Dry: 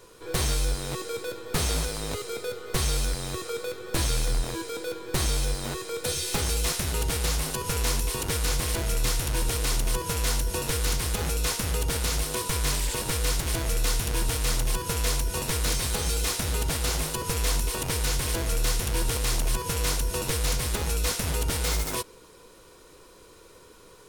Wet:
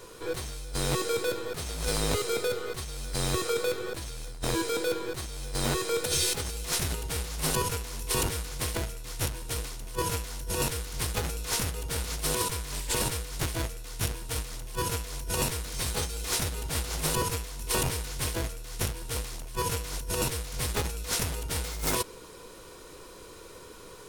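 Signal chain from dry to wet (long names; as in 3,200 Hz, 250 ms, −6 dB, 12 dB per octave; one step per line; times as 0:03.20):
compressor whose output falls as the input rises −30 dBFS, ratio −0.5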